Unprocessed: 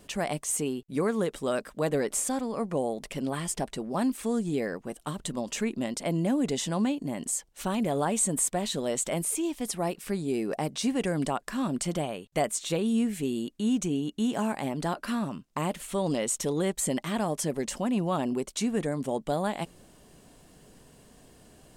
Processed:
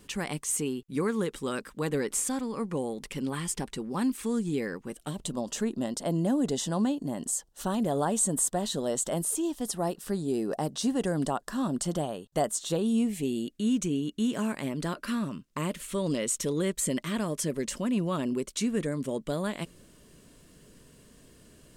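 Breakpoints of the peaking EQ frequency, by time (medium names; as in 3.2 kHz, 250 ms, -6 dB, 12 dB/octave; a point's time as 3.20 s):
peaking EQ -15 dB 0.36 oct
4.88 s 650 Hz
5.37 s 2.3 kHz
12.77 s 2.3 kHz
13.71 s 780 Hz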